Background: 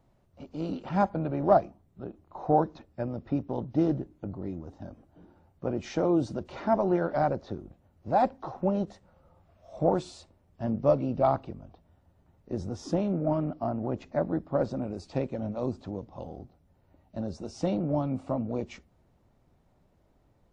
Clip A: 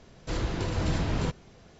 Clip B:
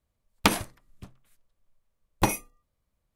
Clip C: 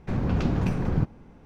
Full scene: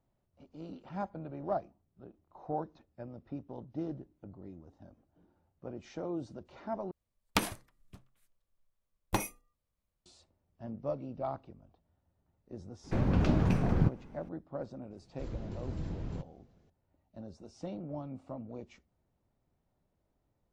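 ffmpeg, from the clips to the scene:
ffmpeg -i bed.wav -i cue0.wav -i cue1.wav -i cue2.wav -filter_complex "[0:a]volume=-12.5dB[link_01];[1:a]tiltshelf=frequency=630:gain=6.5[link_02];[link_01]asplit=2[link_03][link_04];[link_03]atrim=end=6.914[link_05];[2:a]atrim=end=3.15,asetpts=PTS-STARTPTS,volume=-8dB[link_06];[link_04]atrim=start=10.056[link_07];[3:a]atrim=end=1.45,asetpts=PTS-STARTPTS,volume=-2.5dB,afade=type=in:duration=0.004:curve=hsin,afade=type=out:start_time=1.446:duration=0.004:curve=hsin,adelay=566244S[link_08];[link_02]atrim=end=1.79,asetpts=PTS-STARTPTS,volume=-16dB,afade=type=in:duration=0.004:curve=hsin,afade=type=out:start_time=1.786:duration=0.004:curve=hsin,adelay=14910[link_09];[link_05][link_06]acrossfade=duration=0.004:curve1=hsin:curve2=hsin[link_10];[link_10][link_07]acrossfade=duration=0.004:curve1=hsin:curve2=hsin[link_11];[link_11][link_08][link_09]amix=inputs=3:normalize=0" out.wav

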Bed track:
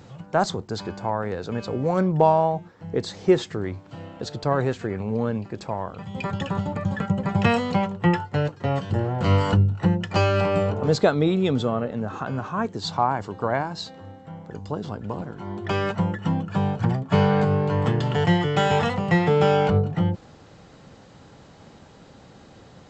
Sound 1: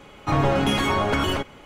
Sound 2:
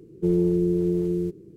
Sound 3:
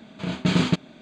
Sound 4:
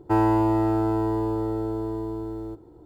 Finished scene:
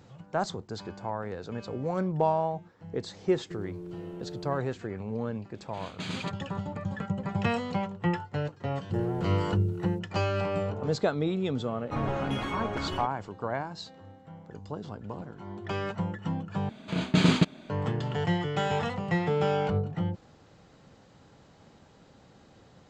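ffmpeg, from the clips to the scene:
ffmpeg -i bed.wav -i cue0.wav -i cue1.wav -i cue2.wav -filter_complex "[2:a]asplit=2[link_01][link_02];[3:a]asplit=2[link_03][link_04];[0:a]volume=-8dB[link_05];[link_01]acompressor=threshold=-27dB:ratio=6:attack=3.2:release=140:knee=1:detection=peak[link_06];[link_03]tiltshelf=frequency=970:gain=-4.5[link_07];[1:a]aemphasis=mode=reproduction:type=50kf[link_08];[link_05]asplit=2[link_09][link_10];[link_09]atrim=end=16.694[link_11];[link_04]atrim=end=1.01,asetpts=PTS-STARTPTS,volume=-1dB[link_12];[link_10]atrim=start=17.696[link_13];[link_06]atrim=end=1.56,asetpts=PTS-STARTPTS,volume=-10.5dB,afade=type=in:duration=0.004:curve=hsin,afade=type=out:start_time=1.556:duration=0.004:curve=hsin,adelay=3280[link_14];[link_07]atrim=end=1.01,asetpts=PTS-STARTPTS,volume=-13.5dB,afade=type=in:duration=0.004:curve=hsin,afade=type=out:start_time=1.006:duration=0.004:curve=hsin,adelay=5540[link_15];[link_02]atrim=end=1.56,asetpts=PTS-STARTPTS,volume=-12.5dB,afade=type=in:duration=0.004:curve=hsin,afade=type=out:start_time=1.556:duration=0.004:curve=hsin,adelay=8690[link_16];[link_08]atrim=end=1.65,asetpts=PTS-STARTPTS,volume=-10.5dB,afade=type=in:duration=0.004:curve=hsin,afade=type=out:start_time=1.646:duration=0.004:curve=hsin,adelay=11640[link_17];[link_11][link_12]acrossfade=duration=0.004:curve1=hsin:curve2=hsin[link_18];[link_18][link_13]acrossfade=duration=0.004:curve1=hsin:curve2=hsin[link_19];[link_19][link_14][link_15][link_16][link_17]amix=inputs=5:normalize=0" out.wav

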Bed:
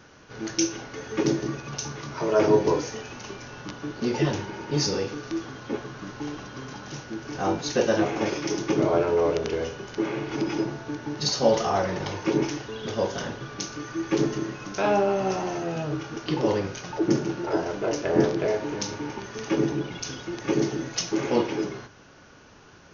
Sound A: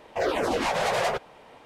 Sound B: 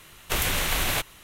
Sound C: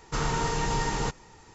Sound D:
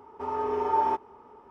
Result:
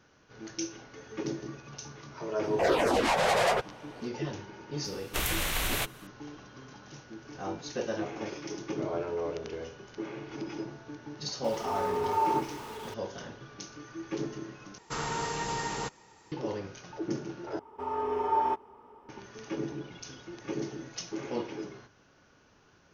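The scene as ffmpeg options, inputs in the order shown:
ffmpeg -i bed.wav -i cue0.wav -i cue1.wav -i cue2.wav -i cue3.wav -filter_complex "[4:a]asplit=2[link_01][link_02];[0:a]volume=-11dB[link_03];[link_01]aeval=exprs='val(0)+0.5*0.0168*sgn(val(0))':channel_layout=same[link_04];[3:a]highpass=frequency=230:poles=1[link_05];[link_02]equalizer=frequency=3100:width_type=o:width=0.57:gain=3[link_06];[link_03]asplit=3[link_07][link_08][link_09];[link_07]atrim=end=14.784[link_10];[link_05]atrim=end=1.54,asetpts=PTS-STARTPTS,volume=-3.5dB[link_11];[link_08]atrim=start=16.316:end=17.594[link_12];[link_06]atrim=end=1.5,asetpts=PTS-STARTPTS,volume=-2.5dB[link_13];[link_09]atrim=start=19.086[link_14];[1:a]atrim=end=1.65,asetpts=PTS-STARTPTS,afade=type=in:duration=0.004:curve=hsin,afade=type=out:start_time=1.646:duration=0.004:curve=hsin,adelay=2430[link_15];[2:a]atrim=end=1.23,asetpts=PTS-STARTPTS,volume=-5dB,afade=type=in:duration=0.004:curve=hsin,afade=type=out:start_time=1.226:duration=0.004:curve=hsin,adelay=4840[link_16];[link_04]atrim=end=1.5,asetpts=PTS-STARTPTS,volume=-3.5dB,afade=type=in:duration=0.004:curve=hsin,afade=type=out:start_time=1.496:duration=0.004:curve=hsin,adelay=11440[link_17];[link_10][link_11]acrossfade=duration=0.004:curve1=hsin:curve2=hsin[link_18];[link_18][link_12]acrossfade=duration=0.004:curve1=hsin:curve2=hsin[link_19];[link_19][link_13]acrossfade=duration=0.004:curve1=hsin:curve2=hsin[link_20];[link_20][link_14]acrossfade=duration=0.004:curve1=hsin:curve2=hsin[link_21];[link_21][link_15][link_16][link_17]amix=inputs=4:normalize=0" out.wav

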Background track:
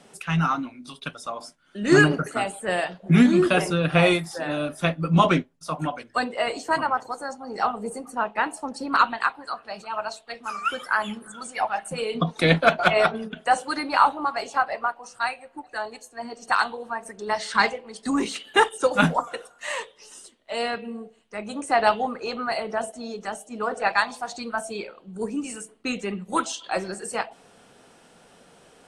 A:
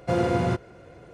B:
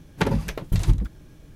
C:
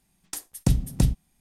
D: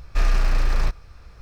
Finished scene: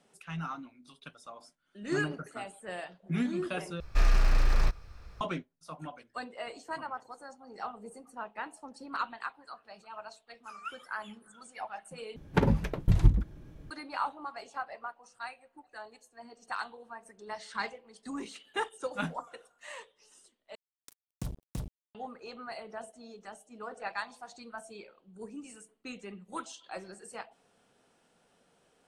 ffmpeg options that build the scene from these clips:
ffmpeg -i bed.wav -i cue0.wav -i cue1.wav -i cue2.wav -i cue3.wav -filter_complex "[0:a]volume=-15dB[link_01];[2:a]highshelf=frequency=2900:gain=-11.5[link_02];[3:a]acrusher=bits=3:mix=0:aa=0.5[link_03];[link_01]asplit=4[link_04][link_05][link_06][link_07];[link_04]atrim=end=3.804[link_08];[4:a]atrim=end=1.41,asetpts=PTS-STARTPTS,volume=-4.5dB[link_09];[link_05]atrim=start=5.206:end=12.164[link_10];[link_02]atrim=end=1.55,asetpts=PTS-STARTPTS,volume=-2dB[link_11];[link_06]atrim=start=13.706:end=20.554[link_12];[link_03]atrim=end=1.4,asetpts=PTS-STARTPTS,volume=-17dB[link_13];[link_07]atrim=start=21.946[link_14];[link_08][link_09]acrossfade=duration=0.004:curve1=hsin:curve2=hsin[link_15];[link_15][link_10]acrossfade=duration=0.004:curve1=hsin:curve2=hsin[link_16];[link_16][link_11]acrossfade=duration=0.004:curve1=hsin:curve2=hsin[link_17];[link_17][link_12]acrossfade=duration=0.004:curve1=hsin:curve2=hsin[link_18];[link_18][link_13]acrossfade=duration=0.004:curve1=hsin:curve2=hsin[link_19];[link_19][link_14]acrossfade=duration=0.004:curve1=hsin:curve2=hsin" out.wav

